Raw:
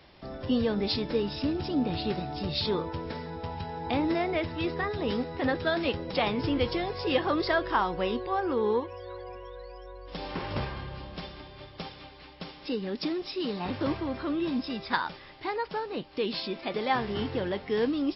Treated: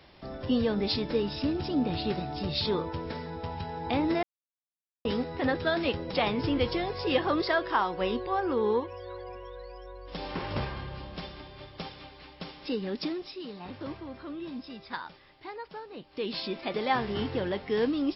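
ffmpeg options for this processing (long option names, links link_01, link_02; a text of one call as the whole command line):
ffmpeg -i in.wav -filter_complex "[0:a]asettb=1/sr,asplit=3[link_01][link_02][link_03];[link_01]atrim=end=7.424[link_04];[link_02]atrim=start=7.42:end=8.01,asetpts=PTS-STARTPTS,afade=type=in:duration=0.004:curve=qsin,afade=type=out:start_time=0.586:duration=0.004:curve=qsin,lowshelf=frequency=150:gain=-10.5[link_05];[link_03]atrim=start=8.006[link_06];[link_04][link_05]acrossfade=duration=0.004:curve1=hsin:curve2=qsin[link_07];[link_07][link_06]acrossfade=duration=0.004:curve1=qsin:curve2=hsin,asplit=5[link_08][link_09][link_10][link_11][link_12];[link_08]atrim=end=4.23,asetpts=PTS-STARTPTS,afade=type=out:start_time=4.226:duration=0.004:curve=hsin[link_13];[link_09]atrim=start=4.23:end=5.05,asetpts=PTS-STARTPTS,volume=0[link_14];[link_10]atrim=start=5.05:end=13.43,asetpts=PTS-STARTPTS,afade=type=in:duration=0.004:curve=hsin,afade=type=out:start_time=7.89:duration=0.49:silence=0.354813[link_15];[link_11]atrim=start=13.43:end=15.98,asetpts=PTS-STARTPTS,volume=-9dB[link_16];[link_12]atrim=start=15.98,asetpts=PTS-STARTPTS,afade=type=in:duration=0.49:silence=0.354813[link_17];[link_13][link_14][link_15][link_16][link_17]concat=n=5:v=0:a=1" out.wav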